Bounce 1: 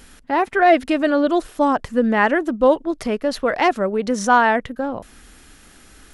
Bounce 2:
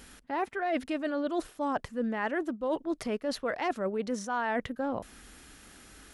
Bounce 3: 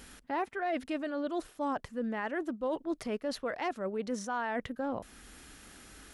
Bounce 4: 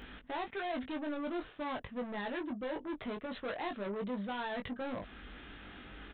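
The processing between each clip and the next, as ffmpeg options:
-af "highpass=f=45:p=1,areverse,acompressor=threshold=-23dB:ratio=10,areverse,volume=-4.5dB"
-af "alimiter=level_in=1dB:limit=-24dB:level=0:latency=1:release=417,volume=-1dB"
-filter_complex "[0:a]aresample=8000,asoftclip=type=tanh:threshold=-39.5dB,aresample=44100,asplit=2[a][b];[b]adelay=20,volume=-5dB[c];[a][c]amix=inputs=2:normalize=0,volume=3dB"

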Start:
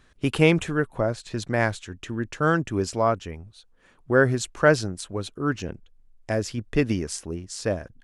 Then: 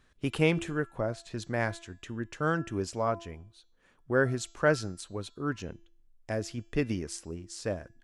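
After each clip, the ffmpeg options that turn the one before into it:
-af "bandreject=f=337.6:t=h:w=4,bandreject=f=675.2:t=h:w=4,bandreject=f=1.0128k:t=h:w=4,bandreject=f=1.3504k:t=h:w=4,bandreject=f=1.688k:t=h:w=4,bandreject=f=2.0256k:t=h:w=4,bandreject=f=2.3632k:t=h:w=4,bandreject=f=2.7008k:t=h:w=4,bandreject=f=3.0384k:t=h:w=4,bandreject=f=3.376k:t=h:w=4,bandreject=f=3.7136k:t=h:w=4,bandreject=f=4.0512k:t=h:w=4,bandreject=f=4.3888k:t=h:w=4,bandreject=f=4.7264k:t=h:w=4,bandreject=f=5.064k:t=h:w=4,bandreject=f=5.4016k:t=h:w=4,bandreject=f=5.7392k:t=h:w=4,bandreject=f=6.0768k:t=h:w=4,bandreject=f=6.4144k:t=h:w=4,bandreject=f=6.752k:t=h:w=4,bandreject=f=7.0896k:t=h:w=4,bandreject=f=7.4272k:t=h:w=4,bandreject=f=7.7648k:t=h:w=4,volume=-7dB"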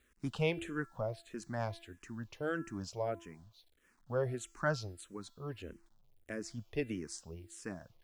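-filter_complex "[0:a]acrusher=bits=10:mix=0:aa=0.000001,asplit=2[a][b];[b]afreqshift=-1.6[c];[a][c]amix=inputs=2:normalize=1,volume=-4.5dB"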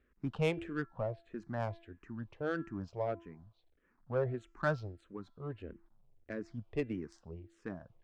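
-af "adynamicsmooth=sensitivity=4:basefreq=1.7k,volume=1dB"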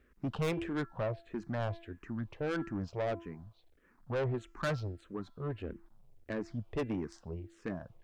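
-af "asoftclip=type=tanh:threshold=-35.5dB,volume=6.5dB"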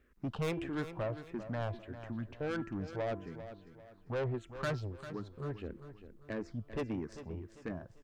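-af "aecho=1:1:396|792|1188|1584:0.251|0.0904|0.0326|0.0117,volume=-2dB"

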